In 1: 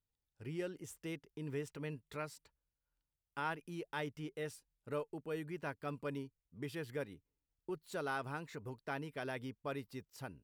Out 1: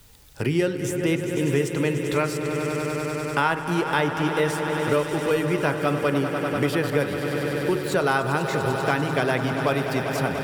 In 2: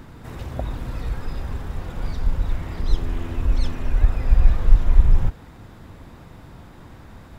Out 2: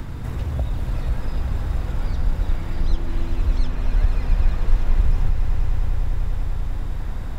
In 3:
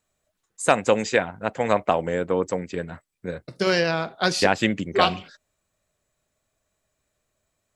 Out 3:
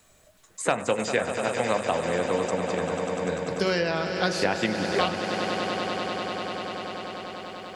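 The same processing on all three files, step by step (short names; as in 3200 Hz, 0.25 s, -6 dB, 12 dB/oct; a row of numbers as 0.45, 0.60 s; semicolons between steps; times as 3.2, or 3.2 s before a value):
de-hum 52.57 Hz, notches 36; on a send: swelling echo 98 ms, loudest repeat 5, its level -13.5 dB; on the sum: three-band squash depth 70%; normalise peaks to -6 dBFS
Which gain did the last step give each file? +18.5, -1.5, -4.0 dB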